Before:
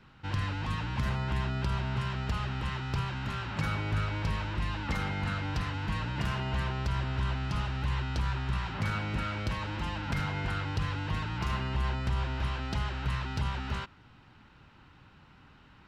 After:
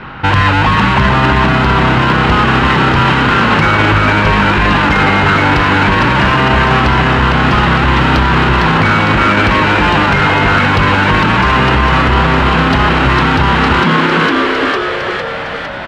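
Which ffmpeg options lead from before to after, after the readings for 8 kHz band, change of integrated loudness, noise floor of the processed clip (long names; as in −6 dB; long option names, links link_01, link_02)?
can't be measured, +23.0 dB, −19 dBFS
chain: -filter_complex "[0:a]adynamicsmooth=sensitivity=7.5:basefreq=3000,aresample=32000,aresample=44100,asplit=2[link_01][link_02];[link_02]highpass=frequency=720:poles=1,volume=10dB,asoftclip=type=tanh:threshold=-20dB[link_03];[link_01][link_03]amix=inputs=2:normalize=0,lowpass=frequency=2500:poles=1,volume=-6dB,asplit=2[link_04][link_05];[link_05]asplit=8[link_06][link_07][link_08][link_09][link_10][link_11][link_12][link_13];[link_06]adelay=455,afreqshift=98,volume=-4.5dB[link_14];[link_07]adelay=910,afreqshift=196,volume=-9.1dB[link_15];[link_08]adelay=1365,afreqshift=294,volume=-13.7dB[link_16];[link_09]adelay=1820,afreqshift=392,volume=-18.2dB[link_17];[link_10]adelay=2275,afreqshift=490,volume=-22.8dB[link_18];[link_11]adelay=2730,afreqshift=588,volume=-27.4dB[link_19];[link_12]adelay=3185,afreqshift=686,volume=-32dB[link_20];[link_13]adelay=3640,afreqshift=784,volume=-36.6dB[link_21];[link_14][link_15][link_16][link_17][link_18][link_19][link_20][link_21]amix=inputs=8:normalize=0[link_22];[link_04][link_22]amix=inputs=2:normalize=0,alimiter=level_in=30.5dB:limit=-1dB:release=50:level=0:latency=1,volume=-1dB"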